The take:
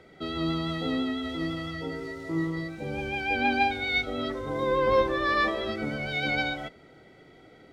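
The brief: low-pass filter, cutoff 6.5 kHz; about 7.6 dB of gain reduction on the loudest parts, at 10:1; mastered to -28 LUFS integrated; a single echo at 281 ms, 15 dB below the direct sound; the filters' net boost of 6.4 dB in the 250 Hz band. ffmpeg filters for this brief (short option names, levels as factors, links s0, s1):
-af "lowpass=6500,equalizer=f=250:t=o:g=8,acompressor=threshold=0.0562:ratio=10,aecho=1:1:281:0.178,volume=1.19"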